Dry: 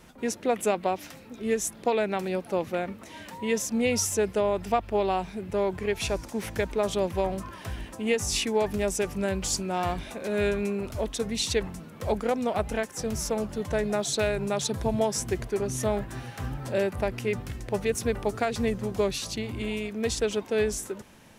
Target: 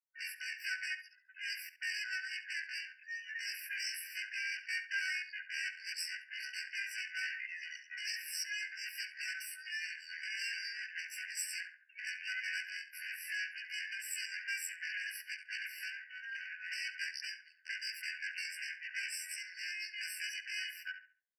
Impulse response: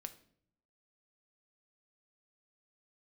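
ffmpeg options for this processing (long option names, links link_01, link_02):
-filter_complex "[0:a]afftfilt=real='re':imag='-im':win_size=2048:overlap=0.75,bandreject=frequency=60:width_type=h:width=6,bandreject=frequency=120:width_type=h:width=6,bandreject=frequency=180:width_type=h:width=6,bandreject=frequency=240:width_type=h:width=6,bandreject=frequency=300:width_type=h:width=6,bandreject=frequency=360:width_type=h:width=6,bandreject=frequency=420:width_type=h:width=6,bandreject=frequency=480:width_type=h:width=6,afftfilt=real='re*gte(hypot(re,im),0.00794)':imag='im*gte(hypot(re,im),0.00794)':win_size=1024:overlap=0.75,acrossover=split=490|3000[link_01][link_02][link_03];[link_02]acompressor=threshold=-56dB:ratio=2[link_04];[link_01][link_04][link_03]amix=inputs=3:normalize=0,alimiter=level_in=3dB:limit=-24dB:level=0:latency=1:release=494,volume=-3dB,aeval=exprs='0.0447*(cos(1*acos(clip(val(0)/0.0447,-1,1)))-cos(1*PI/2))+0.00251*(cos(2*acos(clip(val(0)/0.0447,-1,1)))-cos(2*PI/2))+0.000282*(cos(3*acos(clip(val(0)/0.0447,-1,1)))-cos(3*PI/2))+0.00355*(cos(5*acos(clip(val(0)/0.0447,-1,1)))-cos(5*PI/2))+0.00708*(cos(8*acos(clip(val(0)/0.0447,-1,1)))-cos(8*PI/2))':channel_layout=same,asetrate=85689,aresample=44100,atempo=0.514651,adynamicsmooth=sensitivity=5.5:basefreq=4700,asplit=2[link_05][link_06];[link_06]adelay=69,lowpass=frequency=3100:poles=1,volume=-10dB,asplit=2[link_07][link_08];[link_08]adelay=69,lowpass=frequency=3100:poles=1,volume=0.33,asplit=2[link_09][link_10];[link_10]adelay=69,lowpass=frequency=3100:poles=1,volume=0.33,asplit=2[link_11][link_12];[link_12]adelay=69,lowpass=frequency=3100:poles=1,volume=0.33[link_13];[link_05][link_07][link_09][link_11][link_13]amix=inputs=5:normalize=0,afftfilt=real='re*eq(mod(floor(b*sr/1024/1500),2),1)':imag='im*eq(mod(floor(b*sr/1024/1500),2),1)':win_size=1024:overlap=0.75,volume=10dB"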